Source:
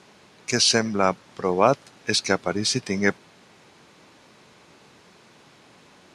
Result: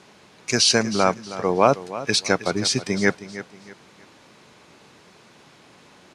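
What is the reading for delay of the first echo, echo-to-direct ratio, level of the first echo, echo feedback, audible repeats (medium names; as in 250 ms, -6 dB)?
317 ms, -14.0 dB, -14.5 dB, 31%, 3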